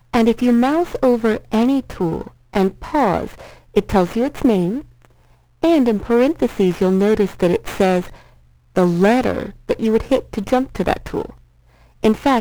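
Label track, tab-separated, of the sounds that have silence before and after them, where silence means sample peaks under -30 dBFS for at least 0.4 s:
5.630000	8.100000	sound
8.760000	11.300000	sound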